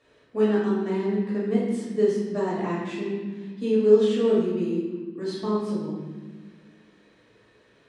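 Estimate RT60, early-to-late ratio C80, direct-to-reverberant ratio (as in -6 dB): 1.4 s, 3.0 dB, -9.5 dB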